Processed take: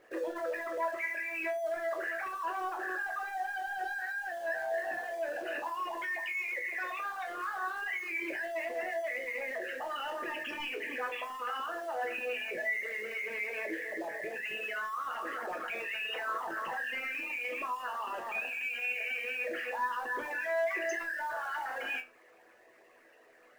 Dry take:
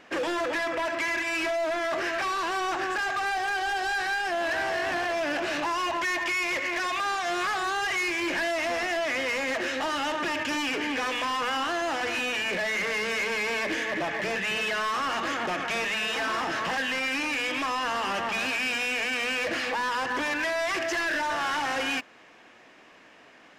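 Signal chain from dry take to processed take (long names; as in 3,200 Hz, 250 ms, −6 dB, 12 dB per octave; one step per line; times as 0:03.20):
spectral envelope exaggerated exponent 3
mains-hum notches 50/100/150/200/250/300/350 Hz
in parallel at −5 dB: log-companded quantiser 4 bits
on the sum: resonators tuned to a chord E2 sus4, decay 0.22 s
level −2 dB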